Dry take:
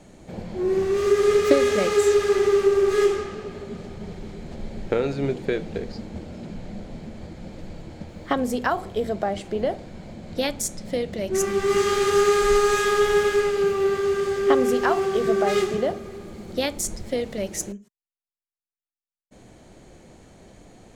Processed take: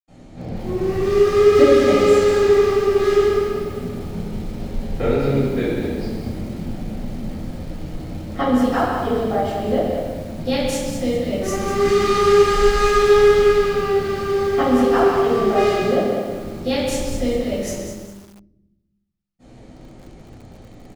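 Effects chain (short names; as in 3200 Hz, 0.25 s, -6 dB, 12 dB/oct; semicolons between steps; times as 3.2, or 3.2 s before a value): 15.66–16.15 HPF 100 Hz -> 270 Hz 24 dB/oct; outdoor echo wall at 22 m, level -9 dB; reverb RT60 1.0 s, pre-delay 78 ms; lo-fi delay 0.199 s, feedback 35%, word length 8-bit, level -7 dB; gain +8 dB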